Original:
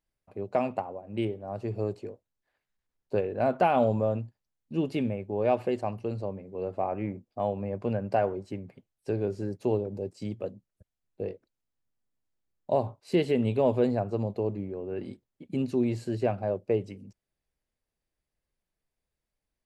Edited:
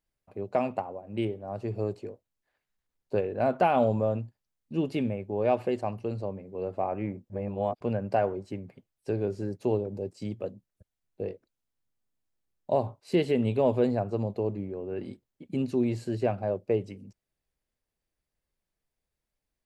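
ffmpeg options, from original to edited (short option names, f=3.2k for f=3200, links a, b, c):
-filter_complex "[0:a]asplit=3[a][b][c];[a]atrim=end=7.302[d];[b]atrim=start=7.298:end=7.812,asetpts=PTS-STARTPTS,areverse[e];[c]atrim=start=7.808[f];[d][e]acrossfade=d=0.004:c1=hsin:c2=hsin[g];[g][f]acrossfade=d=0.004:c1=hsin:c2=hsin"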